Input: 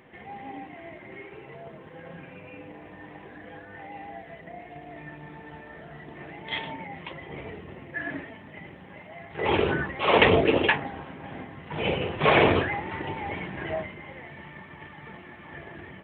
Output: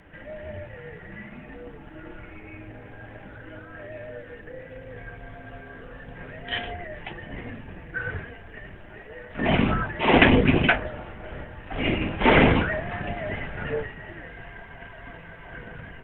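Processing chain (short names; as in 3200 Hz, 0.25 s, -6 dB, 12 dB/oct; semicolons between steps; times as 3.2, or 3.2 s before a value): frequency shift -190 Hz; gain +2.5 dB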